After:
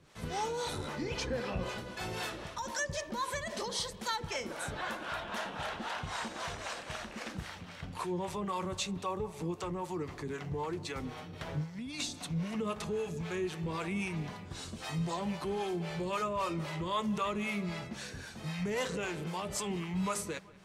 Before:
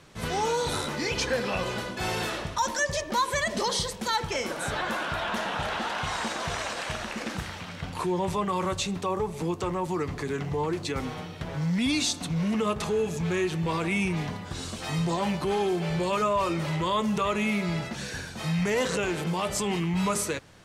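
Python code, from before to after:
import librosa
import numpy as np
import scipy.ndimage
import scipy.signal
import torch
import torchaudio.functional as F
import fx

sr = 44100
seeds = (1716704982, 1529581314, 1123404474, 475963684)

y = fx.tilt_eq(x, sr, slope=-1.5, at=(0.78, 1.69))
y = fx.over_compress(y, sr, threshold_db=-29.0, ratio=-0.5, at=(11.33, 12.01))
y = fx.harmonic_tremolo(y, sr, hz=3.8, depth_pct=70, crossover_hz=470.0)
y = fx.echo_bbd(y, sr, ms=189, stages=4096, feedback_pct=65, wet_db=-22.0)
y = F.gain(torch.from_numpy(y), -5.0).numpy()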